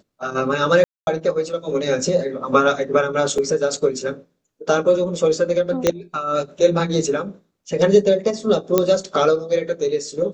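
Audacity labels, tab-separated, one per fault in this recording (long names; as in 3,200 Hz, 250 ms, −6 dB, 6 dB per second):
0.840000	1.070000	drop-out 231 ms
3.380000	3.380000	drop-out 3.8 ms
5.870000	5.870000	click −2 dBFS
8.780000	8.780000	click −2 dBFS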